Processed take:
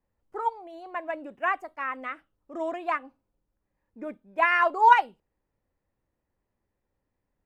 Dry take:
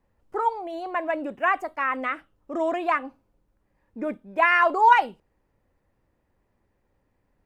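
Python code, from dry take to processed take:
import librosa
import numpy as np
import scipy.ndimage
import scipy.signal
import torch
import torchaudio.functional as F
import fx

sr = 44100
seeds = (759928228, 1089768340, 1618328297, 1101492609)

y = fx.upward_expand(x, sr, threshold_db=-32.0, expansion=1.5)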